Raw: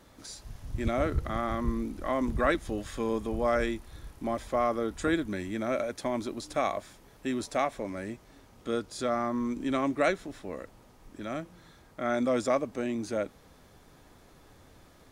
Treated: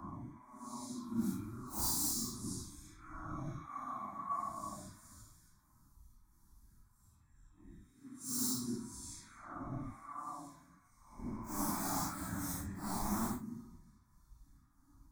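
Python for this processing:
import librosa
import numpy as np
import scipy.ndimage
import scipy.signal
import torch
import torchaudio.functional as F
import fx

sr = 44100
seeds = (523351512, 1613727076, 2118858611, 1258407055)

y = fx.spec_steps(x, sr, hold_ms=50)
y = fx.auto_swell(y, sr, attack_ms=271.0)
y = fx.band_shelf(y, sr, hz=560.0, db=-11.5, octaves=1.3)
y = fx.rev_schroeder(y, sr, rt60_s=0.33, comb_ms=30, drr_db=14.5)
y = fx.chopper(y, sr, hz=9.7, depth_pct=65, duty_pct=80)
y = fx.dispersion(y, sr, late='lows', ms=115.0, hz=1800.0)
y = (np.mod(10.0 ** (32.5 / 20.0) * y + 1.0, 2.0) - 1.0) / 10.0 ** (32.5 / 20.0)
y = fx.fixed_phaser(y, sr, hz=1200.0, stages=4)
y = fx.paulstretch(y, sr, seeds[0], factor=6.3, window_s=0.05, from_s=6.12)
y = fx.curve_eq(y, sr, hz=(1100.0, 1800.0, 3500.0, 6500.0), db=(0, -10, -5, 2))
y = fx.band_widen(y, sr, depth_pct=70)
y = y * 10.0 ** (3.5 / 20.0)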